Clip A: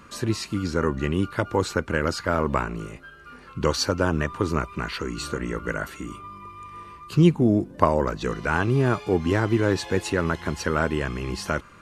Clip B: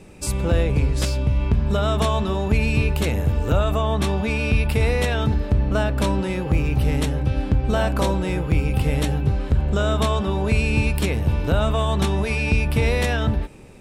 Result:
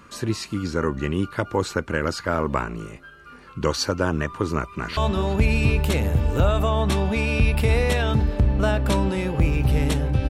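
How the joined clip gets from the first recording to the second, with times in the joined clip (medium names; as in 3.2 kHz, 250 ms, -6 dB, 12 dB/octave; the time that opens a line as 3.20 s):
clip A
4.42–4.97 s: echo throw 370 ms, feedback 65%, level -17 dB
4.97 s: go over to clip B from 2.09 s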